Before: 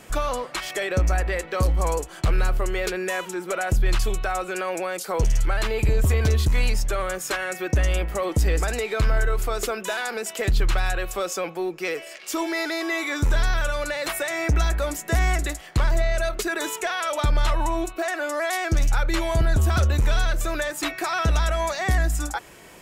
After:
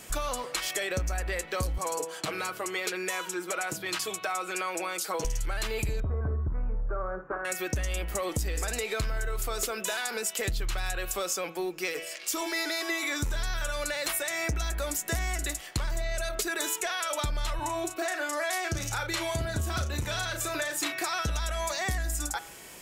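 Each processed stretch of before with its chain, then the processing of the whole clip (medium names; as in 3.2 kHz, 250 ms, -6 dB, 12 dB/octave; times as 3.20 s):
1.78–5.25 s: Bessel high-pass 260 Hz, order 4 + treble shelf 6.3 kHz -6 dB + comb 6.3 ms, depth 54%
6.00–7.45 s: elliptic low-pass 1.4 kHz, stop band 70 dB + flutter echo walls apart 9.1 m, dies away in 0.27 s
17.59–21.04 s: high-pass 63 Hz 24 dB/octave + treble shelf 7.8 kHz -5 dB + doubling 35 ms -7.5 dB
whole clip: treble shelf 3.2 kHz +10 dB; de-hum 163.6 Hz, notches 23; compression, threshold -23 dBFS; trim -4 dB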